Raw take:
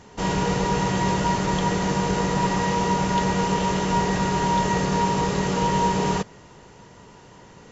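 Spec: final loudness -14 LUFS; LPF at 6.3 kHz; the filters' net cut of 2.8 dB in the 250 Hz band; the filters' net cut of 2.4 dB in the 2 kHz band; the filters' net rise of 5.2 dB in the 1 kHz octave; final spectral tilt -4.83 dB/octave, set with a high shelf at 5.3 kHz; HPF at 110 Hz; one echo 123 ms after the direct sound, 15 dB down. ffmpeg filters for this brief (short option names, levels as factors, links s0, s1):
-af "highpass=110,lowpass=6300,equalizer=f=250:t=o:g=-4,equalizer=f=1000:t=o:g=6.5,equalizer=f=2000:t=o:g=-4.5,highshelf=f=5300:g=-3.5,aecho=1:1:123:0.178,volume=2.11"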